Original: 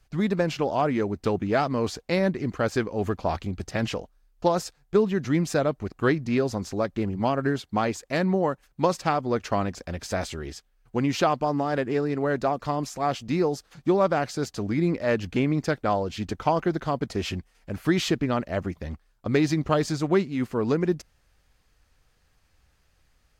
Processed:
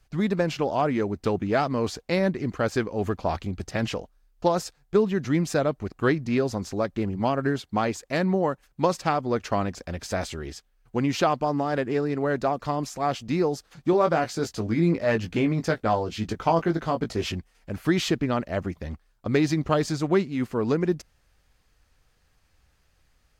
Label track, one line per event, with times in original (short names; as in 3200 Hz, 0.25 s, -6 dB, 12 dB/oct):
13.910000	17.320000	doubler 18 ms -6 dB